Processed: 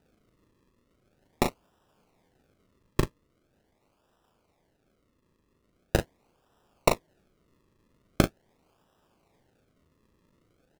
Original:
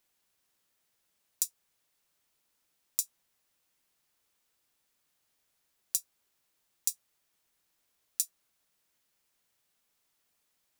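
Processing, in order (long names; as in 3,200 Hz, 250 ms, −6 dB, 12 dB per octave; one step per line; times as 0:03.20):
0:03.02–0:05.95: tuned comb filter 84 Hz, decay 0.18 s, harmonics all, mix 40%
sample-and-hold swept by an LFO 40×, swing 100% 0.42 Hz
double-tracking delay 38 ms −6 dB
level +7.5 dB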